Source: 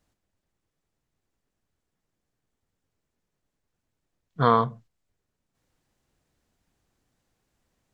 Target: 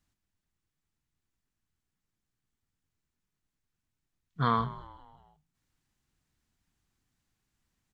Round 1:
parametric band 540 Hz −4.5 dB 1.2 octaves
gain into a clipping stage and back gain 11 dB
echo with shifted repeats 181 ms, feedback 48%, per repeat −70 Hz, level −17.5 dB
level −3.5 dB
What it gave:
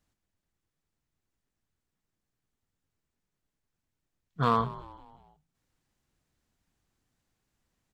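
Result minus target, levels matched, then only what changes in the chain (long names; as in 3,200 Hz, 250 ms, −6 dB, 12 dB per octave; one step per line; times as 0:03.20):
500 Hz band +3.5 dB
change: parametric band 540 Hz −11.5 dB 1.2 octaves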